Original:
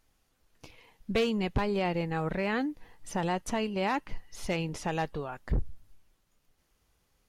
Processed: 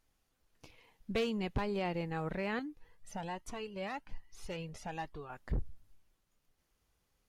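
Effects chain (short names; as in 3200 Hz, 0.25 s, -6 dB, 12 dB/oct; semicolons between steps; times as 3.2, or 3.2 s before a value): 2.59–5.3 cascading flanger rising 1.2 Hz; gain -6 dB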